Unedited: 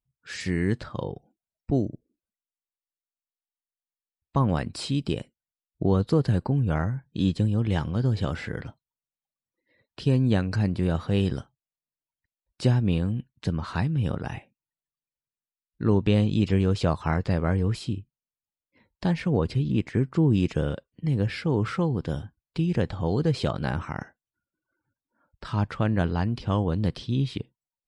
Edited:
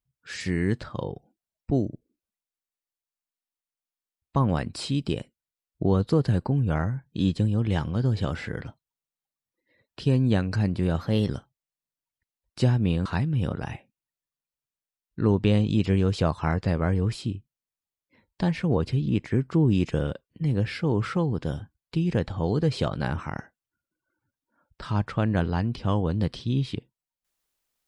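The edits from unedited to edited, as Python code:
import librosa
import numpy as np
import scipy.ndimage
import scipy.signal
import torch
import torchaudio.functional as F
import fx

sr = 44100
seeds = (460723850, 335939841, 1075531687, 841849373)

y = fx.edit(x, sr, fx.speed_span(start_s=11.01, length_s=0.31, speed=1.09),
    fx.cut(start_s=13.08, length_s=0.6), tone=tone)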